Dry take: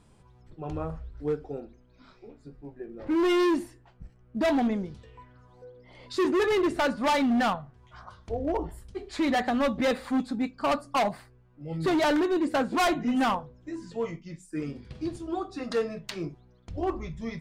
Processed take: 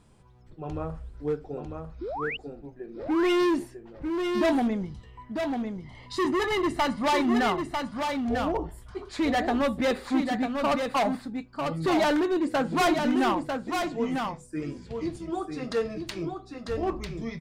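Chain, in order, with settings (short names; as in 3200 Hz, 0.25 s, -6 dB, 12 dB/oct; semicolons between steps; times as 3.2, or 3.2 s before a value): 2.01–2.37 painted sound rise 310–3100 Hz -33 dBFS; 4.81–7.03 comb 1 ms, depth 57%; echo 0.947 s -5 dB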